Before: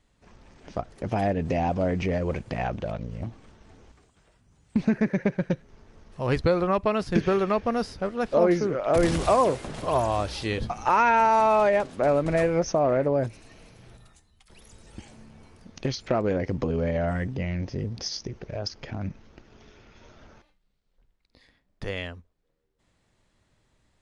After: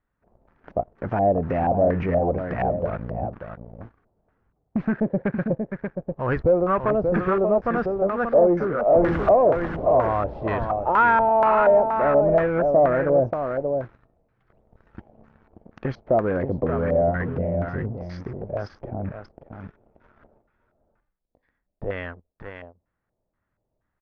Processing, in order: echo 0.583 s -7.5 dB; in parallel at -11 dB: crossover distortion -41.5 dBFS; on the sum: sample leveller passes 2; LFO low-pass square 2.1 Hz 660–1500 Hz; gain -8 dB

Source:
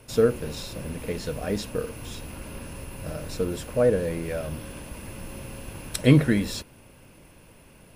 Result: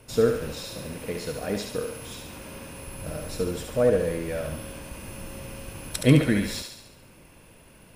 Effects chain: 0.54–2.87 low shelf 64 Hz -12 dB; thinning echo 70 ms, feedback 57%, high-pass 510 Hz, level -4.5 dB; gain -1 dB

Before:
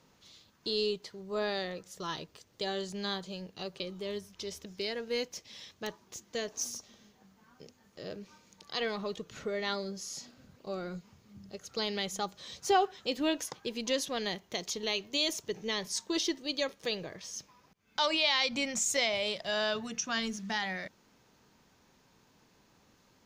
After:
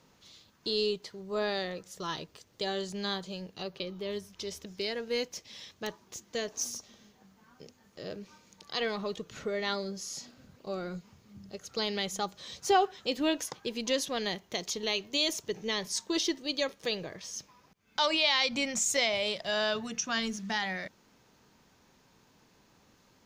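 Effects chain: 3.62–4.12 bell 8200 Hz -11.5 dB 0.6 oct; gain +1.5 dB

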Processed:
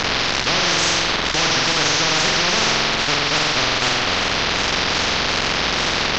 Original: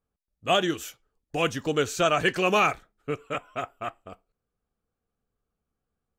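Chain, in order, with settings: delta modulation 32 kbps, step -40.5 dBFS; wow and flutter 120 cents; air absorption 110 m; on a send: flutter echo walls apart 7.8 m, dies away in 0.78 s; on the sum: spectral compressor 10:1; gain +6 dB

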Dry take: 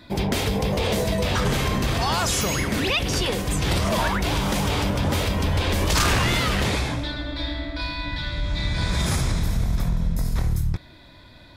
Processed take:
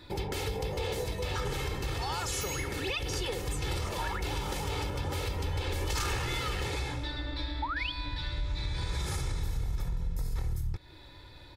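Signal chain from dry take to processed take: painted sound rise, 7.62–7.92, 820–3600 Hz -25 dBFS; compressor 3:1, threshold -30 dBFS, peak gain reduction 10 dB; comb 2.3 ms, depth 69%; gain -4.5 dB

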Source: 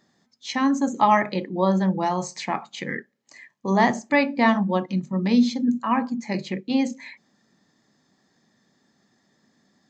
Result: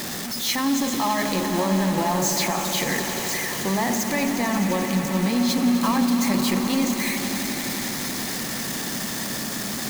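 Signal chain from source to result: zero-crossing step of -27 dBFS; limiter -16 dBFS, peak gain reduction 11.5 dB; high shelf 5500 Hz +9.5 dB; short-mantissa float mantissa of 2-bit; swelling echo 87 ms, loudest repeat 5, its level -12.5 dB

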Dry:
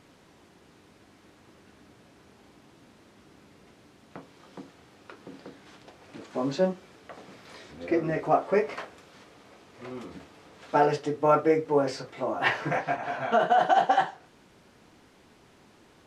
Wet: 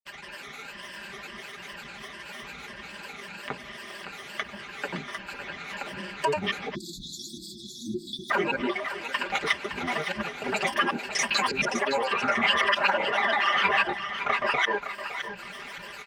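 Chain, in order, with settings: slices in reverse order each 0.173 s, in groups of 5; notches 50/100/150/200/250/300/350/400/450 Hz; gate with hold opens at -48 dBFS; compressor, threshold -30 dBFS, peak gain reduction 13.5 dB; ripple EQ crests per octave 1.3, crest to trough 12 dB; limiter -27.5 dBFS, peak gain reduction 10.5 dB; grains, pitch spread up and down by 12 st; bell 2100 Hz +12.5 dB 1.8 oct; comb 5 ms; on a send: thinning echo 0.564 s, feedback 28%, high-pass 510 Hz, level -9 dB; on the sum: spectral delete 6.75–8.31, 370–3300 Hz; mismatched tape noise reduction encoder only; gain +5.5 dB

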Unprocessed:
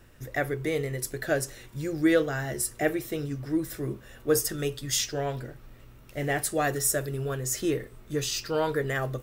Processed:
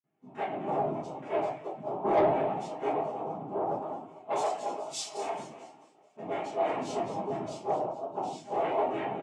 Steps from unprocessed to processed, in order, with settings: bell 4000 Hz -15 dB 1.9 oct; doubler 30 ms -7.5 dB; echo with dull and thin repeats by turns 0.109 s, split 1500 Hz, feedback 73%, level -5 dB; flange 0.65 Hz, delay 0.7 ms, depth 6.3 ms, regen +59%; noise vocoder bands 4; shoebox room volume 41 m³, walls mixed, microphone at 1.5 m; gate with hold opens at -49 dBFS; HPF 650 Hz 6 dB/oct; soft clip -20 dBFS, distortion -10 dB; 3.82–6.17 tilt +2.5 dB/oct; spectral expander 1.5:1

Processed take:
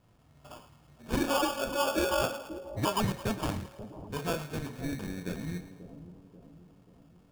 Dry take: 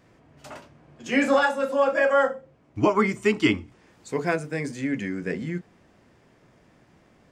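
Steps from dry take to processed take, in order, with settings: low-pass opened by the level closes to 1000 Hz, open at -20.5 dBFS; bell 370 Hz -12 dB 2.1 oct; limiter -19 dBFS, peak gain reduction 7 dB; sample-rate reducer 2000 Hz, jitter 0%; on a send: split-band echo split 810 Hz, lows 0.536 s, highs 0.11 s, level -12.5 dB

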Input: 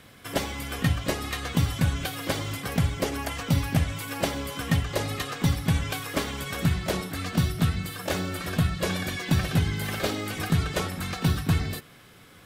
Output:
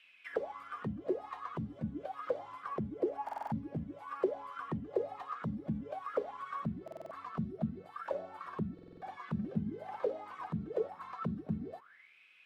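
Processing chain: auto-wah 210–2800 Hz, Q 14, down, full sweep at -19.5 dBFS; stuck buffer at 3.24/6.83/8.74, samples 2048, times 5; gain +6 dB

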